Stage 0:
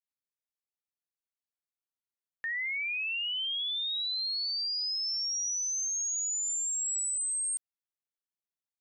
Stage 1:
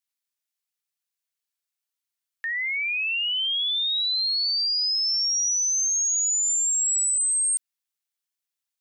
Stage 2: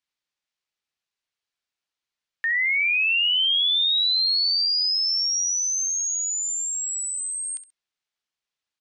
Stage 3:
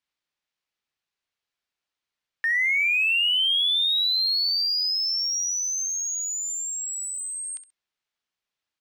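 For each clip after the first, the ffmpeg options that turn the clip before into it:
ffmpeg -i in.wav -af "tiltshelf=frequency=890:gain=-9" out.wav
ffmpeg -i in.wav -af "lowpass=4700,aecho=1:1:66|132:0.224|0.047,volume=5dB" out.wav
ffmpeg -i in.wav -filter_complex "[0:a]highshelf=frequency=5300:gain=-6.5,asplit=2[link_01][link_02];[link_02]asoftclip=type=hard:threshold=-33.5dB,volume=-11dB[link_03];[link_01][link_03]amix=inputs=2:normalize=0" out.wav

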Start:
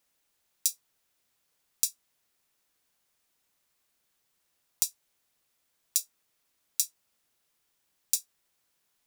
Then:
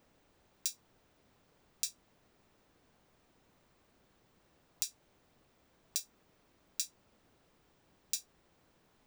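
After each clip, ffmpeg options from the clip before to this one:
ffmpeg -i in.wav -af "equalizer=frequency=13000:width=0.52:gain=-14,alimiter=limit=-17dB:level=0:latency=1:release=137,tiltshelf=frequency=970:gain=8,volume=12.5dB" out.wav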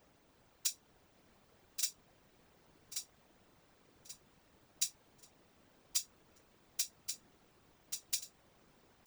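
ffmpeg -i in.wav -af "aeval=exprs='(mod(9.44*val(0)+1,2)-1)/9.44':channel_layout=same,aecho=1:1:1133|2266|3399|4532:0.501|0.16|0.0513|0.0164,afftfilt=real='hypot(re,im)*cos(2*PI*random(0))':imag='hypot(re,im)*sin(2*PI*random(1))':win_size=512:overlap=0.75,volume=7.5dB" out.wav

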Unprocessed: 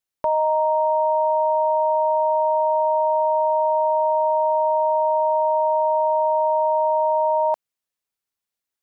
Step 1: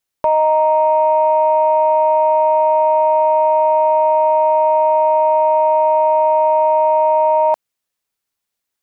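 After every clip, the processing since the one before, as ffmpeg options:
ffmpeg -i in.wav -af "acontrast=69" out.wav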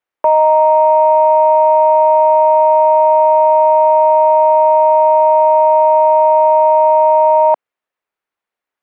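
ffmpeg -i in.wav -filter_complex "[0:a]acrossover=split=300 2500:gain=0.224 1 0.112[link_01][link_02][link_03];[link_01][link_02][link_03]amix=inputs=3:normalize=0,volume=4dB" out.wav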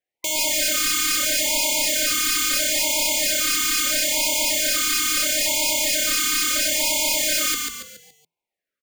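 ffmpeg -i in.wav -filter_complex "[0:a]aeval=exprs='(mod(5.62*val(0)+1,2)-1)/5.62':channel_layout=same,asplit=6[link_01][link_02][link_03][link_04][link_05][link_06];[link_02]adelay=141,afreqshift=-33,volume=-3.5dB[link_07];[link_03]adelay=282,afreqshift=-66,volume=-11.2dB[link_08];[link_04]adelay=423,afreqshift=-99,volume=-19dB[link_09];[link_05]adelay=564,afreqshift=-132,volume=-26.7dB[link_10];[link_06]adelay=705,afreqshift=-165,volume=-34.5dB[link_11];[link_01][link_07][link_08][link_09][link_10][link_11]amix=inputs=6:normalize=0,afftfilt=real='re*(1-between(b*sr/1024,690*pow(1500/690,0.5+0.5*sin(2*PI*0.75*pts/sr))/1.41,690*pow(1500/690,0.5+0.5*sin(2*PI*0.75*pts/sr))*1.41))':imag='im*(1-between(b*sr/1024,690*pow(1500/690,0.5+0.5*sin(2*PI*0.75*pts/sr))/1.41,690*pow(1500/690,0.5+0.5*sin(2*PI*0.75*pts/sr))*1.41))':win_size=1024:overlap=0.75,volume=-3dB" out.wav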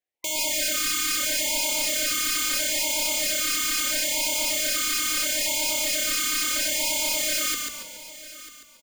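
ffmpeg -i in.wav -af "aecho=1:1:944|1888:0.15|0.0239,volume=-4dB" out.wav

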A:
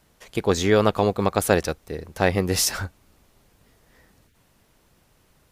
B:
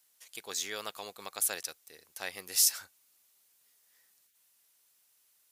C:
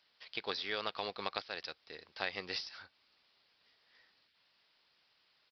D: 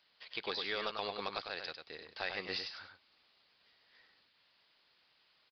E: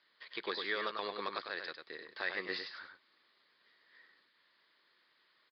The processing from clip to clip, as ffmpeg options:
ffmpeg -i in.wav -af "aderivative,volume=-2dB" out.wav
ffmpeg -i in.wav -af "acompressor=threshold=-37dB:ratio=12,aresample=11025,acrusher=bits=4:mode=log:mix=0:aa=0.000001,aresample=44100,volume=6dB" out.wav
ffmpeg -i in.wav -filter_complex "[0:a]aresample=11025,asoftclip=type=tanh:threshold=-26dB,aresample=44100,asplit=2[link_01][link_02];[link_02]adelay=99.13,volume=-6dB,highshelf=frequency=4000:gain=-2.23[link_03];[link_01][link_03]amix=inputs=2:normalize=0,volume=1dB" out.wav
ffmpeg -i in.wav -af "highpass=190,equalizer=frequency=350:width_type=q:width=4:gain=5,equalizer=frequency=760:width_type=q:width=4:gain=-7,equalizer=frequency=1100:width_type=q:width=4:gain=4,equalizer=frequency=1800:width_type=q:width=4:gain=7,equalizer=frequency=2700:width_type=q:width=4:gain=-7,lowpass=frequency=4500:width=0.5412,lowpass=frequency=4500:width=1.3066" out.wav

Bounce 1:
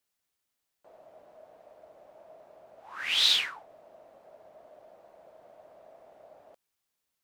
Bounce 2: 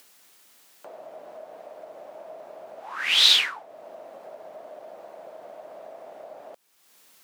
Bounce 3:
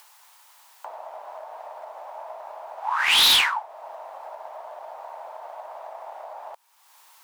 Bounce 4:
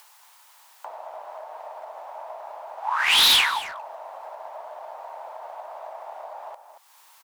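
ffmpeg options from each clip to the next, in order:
ffmpeg -i in.wav -filter_complex "[0:a]highpass=200,asplit=2[link_01][link_02];[link_02]acompressor=mode=upward:threshold=-37dB:ratio=2.5,volume=1dB[link_03];[link_01][link_03]amix=inputs=2:normalize=0" out.wav
ffmpeg -i in.wav -filter_complex "[0:a]asplit=2[link_01][link_02];[link_02]aeval=exprs='sgn(val(0))*max(abs(val(0))-0.0141,0)':channel_layout=same,volume=-8dB[link_03];[link_01][link_03]amix=inputs=2:normalize=0,highpass=frequency=910:width_type=q:width=4.9,volume=15.5dB,asoftclip=hard,volume=-15.5dB,volume=1.5dB" out.wav
ffmpeg -i in.wav -filter_complex "[0:a]asplit=2[link_01][link_02];[link_02]adelay=230,highpass=300,lowpass=3400,asoftclip=type=hard:threshold=-22.5dB,volume=-10dB[link_03];[link_01][link_03]amix=inputs=2:normalize=0" out.wav

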